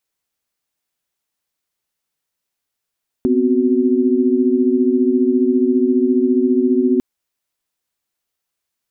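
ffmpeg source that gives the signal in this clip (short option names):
-f lavfi -i "aevalsrc='0.15*(sin(2*PI*246.94*t)+sin(2*PI*261.63*t)+sin(2*PI*369.99*t))':d=3.75:s=44100"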